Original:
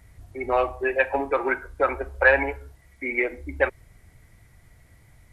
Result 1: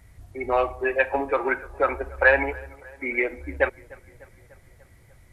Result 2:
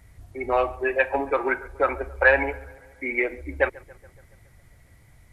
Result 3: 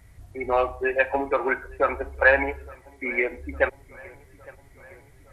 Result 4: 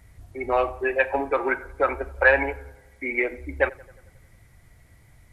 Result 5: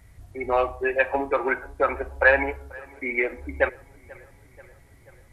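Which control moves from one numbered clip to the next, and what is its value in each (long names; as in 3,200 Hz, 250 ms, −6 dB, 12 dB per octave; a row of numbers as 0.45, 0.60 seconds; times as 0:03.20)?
tape delay, delay time: 297, 139, 861, 88, 485 milliseconds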